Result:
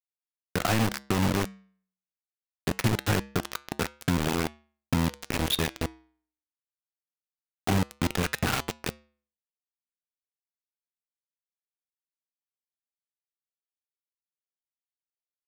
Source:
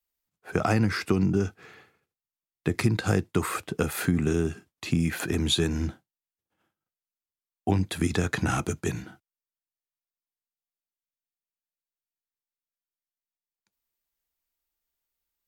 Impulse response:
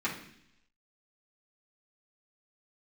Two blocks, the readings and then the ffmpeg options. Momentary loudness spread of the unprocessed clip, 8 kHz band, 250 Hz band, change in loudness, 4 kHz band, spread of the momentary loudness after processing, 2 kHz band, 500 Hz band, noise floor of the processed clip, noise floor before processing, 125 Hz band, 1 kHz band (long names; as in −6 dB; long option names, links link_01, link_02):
8 LU, 0.0 dB, −3.0 dB, −2.0 dB, +0.5 dB, 10 LU, 0.0 dB, −3.5 dB, below −85 dBFS, below −85 dBFS, −3.0 dB, +1.0 dB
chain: -af "lowpass=frequency=4200:width=0.5412,lowpass=frequency=4200:width=1.3066,equalizer=frequency=370:width=1.7:gain=-5.5,acrusher=bits=3:mix=0:aa=0.000001,flanger=delay=6.5:depth=1.7:regen=-90:speed=0.23:shape=triangular,volume=3dB"